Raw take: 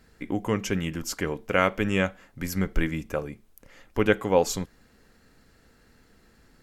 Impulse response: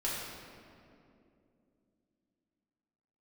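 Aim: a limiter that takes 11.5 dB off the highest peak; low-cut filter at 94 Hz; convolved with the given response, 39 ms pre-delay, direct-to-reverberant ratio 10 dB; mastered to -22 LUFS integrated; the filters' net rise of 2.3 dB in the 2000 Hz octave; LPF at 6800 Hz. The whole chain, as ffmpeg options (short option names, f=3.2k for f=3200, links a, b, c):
-filter_complex "[0:a]highpass=94,lowpass=6.8k,equalizer=f=2k:t=o:g=3,alimiter=limit=-15dB:level=0:latency=1,asplit=2[a][b];[1:a]atrim=start_sample=2205,adelay=39[c];[b][c]afir=irnorm=-1:irlink=0,volume=-15.5dB[d];[a][d]amix=inputs=2:normalize=0,volume=8.5dB"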